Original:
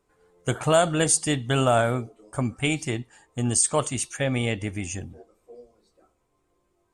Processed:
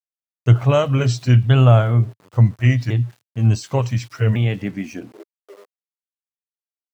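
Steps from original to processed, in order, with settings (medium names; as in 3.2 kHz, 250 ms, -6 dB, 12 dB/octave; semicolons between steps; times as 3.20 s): sawtooth pitch modulation -3.5 st, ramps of 1452 ms; low-pass 4.7 kHz 24 dB/octave; peaking EQ 120 Hz +11.5 dB 0.22 oct; small samples zeroed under -46.5 dBFS; high-pass sweep 110 Hz -> 500 Hz, 4.32–5.45 s; trim +2 dB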